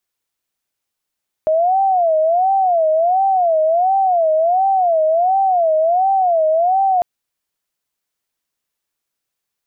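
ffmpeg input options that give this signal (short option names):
-f lavfi -i "aevalsrc='0.266*sin(2*PI*(703*t-78/(2*PI*1.4)*sin(2*PI*1.4*t)))':d=5.55:s=44100"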